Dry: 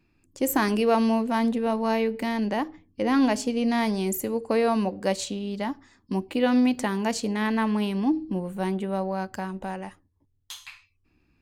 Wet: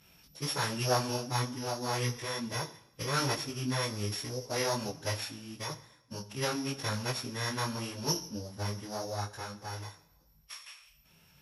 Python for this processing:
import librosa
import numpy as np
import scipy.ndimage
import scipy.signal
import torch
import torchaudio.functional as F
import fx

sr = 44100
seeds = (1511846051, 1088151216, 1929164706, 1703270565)

y = np.r_[np.sort(x[:len(x) // 8 * 8].reshape(-1, 8), axis=1).ravel(), x[len(x) // 8 * 8:]]
y = scipy.signal.sosfilt(scipy.signal.butter(2, 110.0, 'highpass', fs=sr, output='sos'), y)
y = fx.pitch_keep_formants(y, sr, semitones=-10.5)
y = scipy.signal.sosfilt(scipy.signal.butter(2, 11000.0, 'lowpass', fs=sr, output='sos'), y)
y = fx.peak_eq(y, sr, hz=290.0, db=-9.5, octaves=2.5)
y = fx.rev_double_slope(y, sr, seeds[0], early_s=0.87, late_s=2.4, knee_db=-23, drr_db=12.5)
y = fx.detune_double(y, sr, cents=30)